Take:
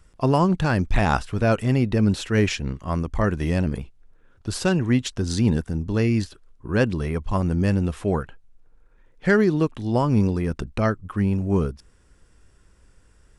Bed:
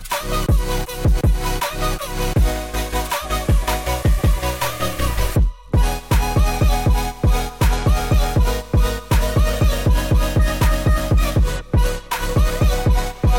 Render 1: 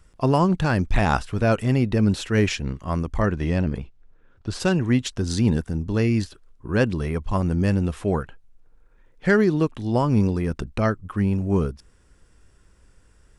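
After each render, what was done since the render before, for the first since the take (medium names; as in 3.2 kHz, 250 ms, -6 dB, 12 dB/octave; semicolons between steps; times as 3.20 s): 3.26–4.60 s: distance through air 74 m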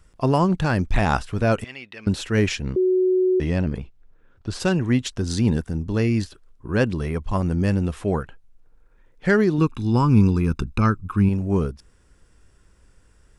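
1.64–2.07 s: band-pass filter 2.6 kHz, Q 1.6; 2.76–3.40 s: bleep 370 Hz -15.5 dBFS; 9.58–11.29 s: comb 0.8 ms, depth 79%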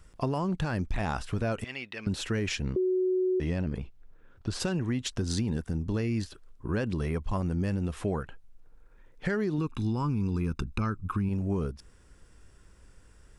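peak limiter -13.5 dBFS, peak gain reduction 8 dB; compression 3:1, threshold -28 dBFS, peak gain reduction 8.5 dB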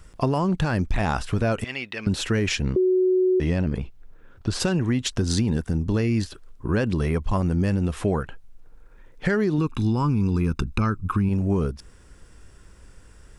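trim +7 dB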